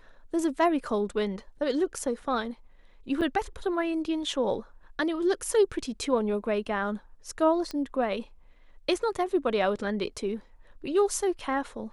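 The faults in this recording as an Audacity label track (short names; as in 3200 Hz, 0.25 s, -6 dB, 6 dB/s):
3.210000	3.220000	gap 6.1 ms
7.710000	7.710000	pop -21 dBFS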